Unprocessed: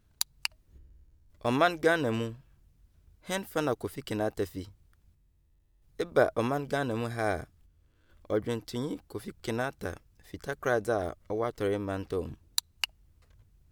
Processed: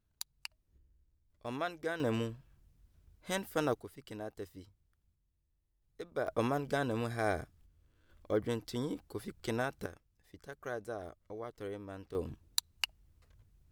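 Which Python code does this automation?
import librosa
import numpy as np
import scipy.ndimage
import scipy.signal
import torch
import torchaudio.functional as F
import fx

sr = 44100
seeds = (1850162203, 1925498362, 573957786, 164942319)

y = fx.gain(x, sr, db=fx.steps((0.0, -12.5), (2.0, -3.0), (3.8, -12.5), (6.27, -3.0), (9.86, -12.5), (12.15, -3.5)))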